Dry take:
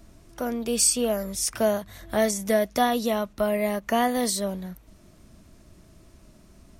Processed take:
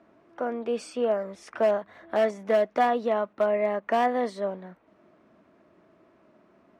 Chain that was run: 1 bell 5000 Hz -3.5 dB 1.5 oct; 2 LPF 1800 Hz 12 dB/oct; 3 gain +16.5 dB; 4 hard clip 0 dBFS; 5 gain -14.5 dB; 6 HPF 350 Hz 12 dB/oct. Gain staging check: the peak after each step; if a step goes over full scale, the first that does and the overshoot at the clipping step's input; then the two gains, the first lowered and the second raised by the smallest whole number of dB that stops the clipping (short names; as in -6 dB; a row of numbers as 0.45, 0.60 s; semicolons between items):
-10.0, -11.0, +5.5, 0.0, -14.5, -11.5 dBFS; step 3, 5.5 dB; step 3 +10.5 dB, step 5 -8.5 dB